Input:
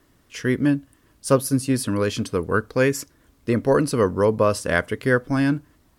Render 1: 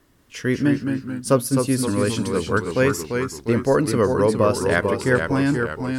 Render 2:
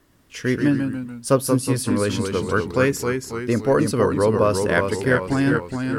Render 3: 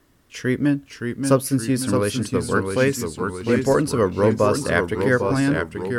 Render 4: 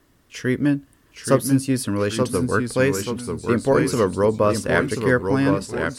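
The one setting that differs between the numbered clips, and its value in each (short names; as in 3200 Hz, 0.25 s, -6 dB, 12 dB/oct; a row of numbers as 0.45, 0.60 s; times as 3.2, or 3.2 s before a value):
echoes that change speed, time: 0.18, 0.103, 0.541, 0.801 s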